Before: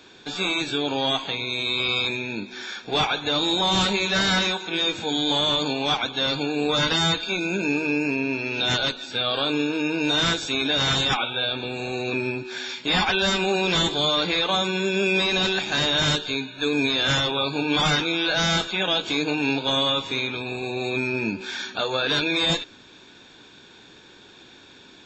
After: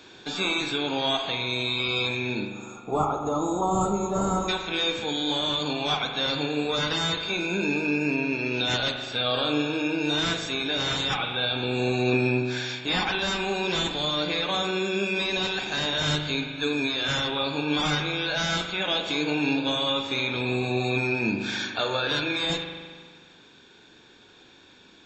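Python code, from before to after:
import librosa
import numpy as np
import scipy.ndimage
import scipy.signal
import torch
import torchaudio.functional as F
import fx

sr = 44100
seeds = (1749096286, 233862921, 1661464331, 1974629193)

y = fx.spec_box(x, sr, start_s=2.48, length_s=2.01, low_hz=1400.0, high_hz=6500.0, gain_db=-27)
y = fx.rider(y, sr, range_db=4, speed_s=0.5)
y = fx.rev_spring(y, sr, rt60_s=1.7, pass_ms=(40,), chirp_ms=75, drr_db=5.0)
y = y * 10.0 ** (-3.5 / 20.0)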